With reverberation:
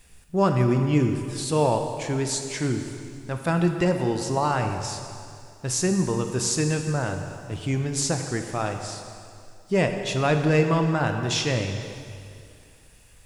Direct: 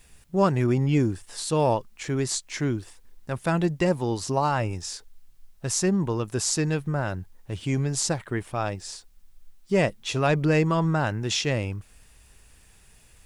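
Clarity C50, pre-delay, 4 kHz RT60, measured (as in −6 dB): 6.0 dB, 6 ms, 2.2 s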